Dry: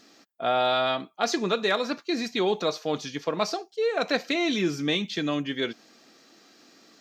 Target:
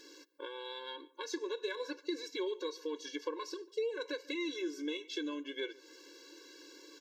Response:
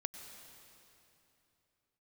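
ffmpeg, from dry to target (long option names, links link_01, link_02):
-filter_complex "[0:a]acompressor=threshold=-38dB:ratio=6,asplit=2[link_01][link_02];[link_02]adelay=144,lowpass=frequency=1800:poles=1,volume=-21.5dB,asplit=2[link_03][link_04];[link_04]adelay=144,lowpass=frequency=1800:poles=1,volume=0.37,asplit=2[link_05][link_06];[link_06]adelay=144,lowpass=frequency=1800:poles=1,volume=0.37[link_07];[link_01][link_03][link_05][link_07]amix=inputs=4:normalize=0,afftfilt=real='re*eq(mod(floor(b*sr/1024/290),2),1)':imag='im*eq(mod(floor(b*sr/1024/290),2),1)':win_size=1024:overlap=0.75,volume=4dB"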